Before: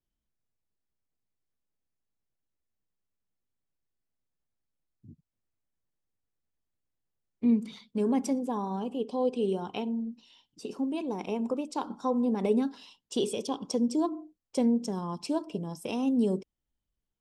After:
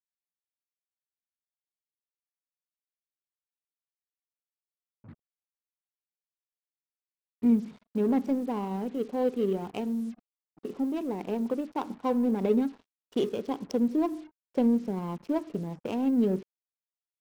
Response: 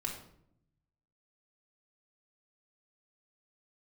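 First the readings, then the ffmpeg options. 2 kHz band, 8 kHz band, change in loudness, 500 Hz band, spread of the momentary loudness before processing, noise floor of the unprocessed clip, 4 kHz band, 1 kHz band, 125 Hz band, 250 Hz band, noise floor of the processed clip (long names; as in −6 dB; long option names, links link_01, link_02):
0.0 dB, below −10 dB, +1.0 dB, +1.0 dB, 9 LU, below −85 dBFS, can't be measured, −0.5 dB, +1.5 dB, +1.5 dB, below −85 dBFS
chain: -af "adynamicsmooth=sensitivity=4:basefreq=830,adynamicequalizer=threshold=0.00501:dfrequency=1000:dqfactor=1.4:tfrequency=1000:tqfactor=1.4:attack=5:release=100:ratio=0.375:range=2:mode=cutabove:tftype=bell,acrusher=bits=8:mix=0:aa=0.5,volume=1.5dB"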